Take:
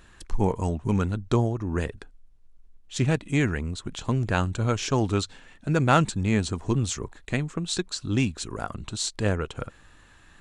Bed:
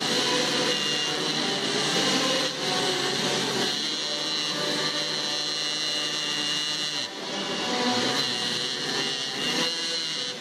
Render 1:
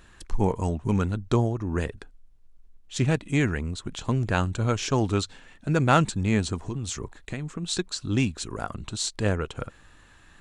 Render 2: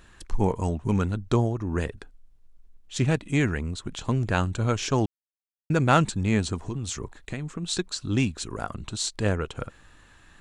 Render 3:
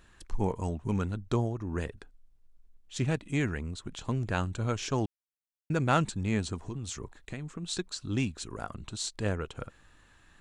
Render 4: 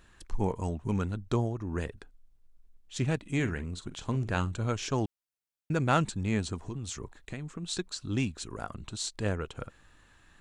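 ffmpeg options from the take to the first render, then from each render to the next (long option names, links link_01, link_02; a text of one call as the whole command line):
ffmpeg -i in.wav -filter_complex "[0:a]asettb=1/sr,asplit=3[link_01][link_02][link_03];[link_01]atrim=end=6.674[link_04];[link_02]atrim=start=6.67:end=7.63,asetpts=PTS-STARTPTS,afade=type=in:duration=0.004:curve=qsin,afade=type=out:start_time=0.956:duration=0.004:curve=qsin,acompressor=threshold=-27dB:ratio=6:attack=3.2:release=140:knee=1:detection=peak[link_05];[link_03]atrim=start=7.626[link_06];[link_04][link_05]acrossfade=duration=0.004:curve1=hsin:curve2=qsin[link_07];[link_07][link_06]acrossfade=duration=0.004:curve1=qsin:curve2=hsin" out.wav
ffmpeg -i in.wav -filter_complex "[0:a]asplit=3[link_01][link_02][link_03];[link_01]atrim=end=5.06,asetpts=PTS-STARTPTS,afade=type=out:start_time=5.056:duration=0.004:curve=hsin[link_04];[link_02]atrim=start=5.06:end=5.7,asetpts=PTS-STARTPTS,volume=0[link_05];[link_03]atrim=start=5.7,asetpts=PTS-STARTPTS,afade=type=in:duration=0.004:curve=hsin[link_06];[link_04][link_05][link_06]concat=n=3:v=0:a=1" out.wav
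ffmpeg -i in.wav -af "volume=-6dB" out.wav
ffmpeg -i in.wav -filter_complex "[0:a]asettb=1/sr,asplit=3[link_01][link_02][link_03];[link_01]atrim=end=3.264[link_04];[link_02]atrim=start=3.26:end=4.55,asetpts=PTS-STARTPTS,afade=type=in:duration=0.004:curve=qsin,afade=type=out:start_time=1.286:duration=0.004:curve=qsin,asplit=2[link_05][link_06];[link_06]adelay=45,volume=-13dB[link_07];[link_05][link_07]amix=inputs=2:normalize=0,atrim=end_sample=56889[link_08];[link_03]atrim=start=4.546[link_09];[link_04][link_08]acrossfade=duration=0.004:curve1=hsin:curve2=qsin[link_10];[link_10][link_09]acrossfade=duration=0.004:curve1=qsin:curve2=hsin" out.wav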